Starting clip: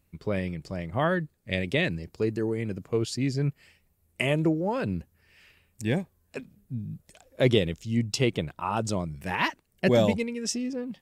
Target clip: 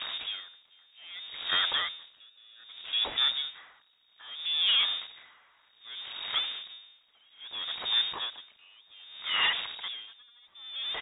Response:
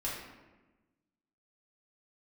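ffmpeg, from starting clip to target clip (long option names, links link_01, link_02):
-filter_complex "[0:a]aeval=exprs='val(0)+0.5*0.0422*sgn(val(0))':channel_layout=same,asettb=1/sr,asplit=3[link_01][link_02][link_03];[link_01]atrim=end=2.174[link_04];[link_02]atrim=start=2.17:end=2.64,asetpts=PTS-STARTPTS,afade=type=in:duration=0.004:curve=qsin,afade=type=out:start_time=0.466:duration=0.004:curve=qsin,aecho=1:1:0.9:0.68,atrim=end_sample=20727[link_05];[link_03]atrim=start=2.636[link_06];[link_04][link_05]acrossfade=duration=0.004:curve1=hsin:curve2=qsin[link_07];[link_07][link_06]acrossfade=duration=0.004:curve1=qsin:curve2=hsin,acrossover=split=250[link_08][link_09];[link_08]alimiter=level_in=2.5dB:limit=-24dB:level=0:latency=1,volume=-2.5dB[link_10];[link_09]acontrast=86[link_11];[link_10][link_11]amix=inputs=2:normalize=0,asoftclip=type=hard:threshold=-16.5dB,lowpass=frequency=3200:width_type=q:width=0.5098,lowpass=frequency=3200:width_type=q:width=0.6013,lowpass=frequency=3200:width_type=q:width=0.9,lowpass=frequency=3200:width_type=q:width=2.563,afreqshift=-3800,asplit=2[link_12][link_13];[link_13]adelay=641.4,volume=-14dB,highshelf=frequency=4000:gain=-14.4[link_14];[link_12][link_14]amix=inputs=2:normalize=0,aeval=exprs='val(0)*pow(10,-32*(0.5-0.5*cos(2*PI*0.63*n/s))/20)':channel_layout=same,volume=-4dB"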